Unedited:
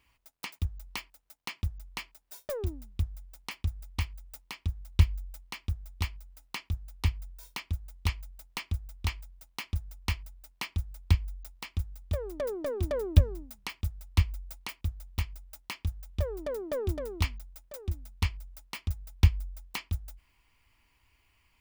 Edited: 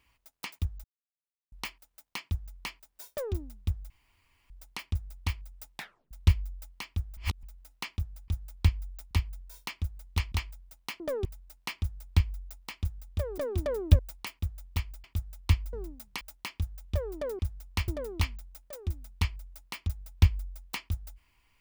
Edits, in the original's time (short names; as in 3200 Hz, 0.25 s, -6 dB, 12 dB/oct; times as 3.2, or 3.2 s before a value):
0.84 insert silence 0.68 s
3.22 insert room tone 0.60 s
4.46 tape stop 0.37 s
5.89–6.15 reverse
8.21–9.02 cut
9.7–10.19 swap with 16.64–16.89
10.74–11.57 copy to 7
12.32–12.63 cut
13.24–13.72 swap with 14.41–15.46